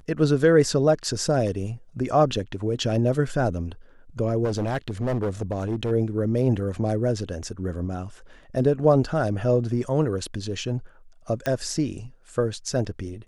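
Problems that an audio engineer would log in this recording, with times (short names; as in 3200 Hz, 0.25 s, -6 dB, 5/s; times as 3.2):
4.44–5.92 clipped -21 dBFS
11.46 pop -13 dBFS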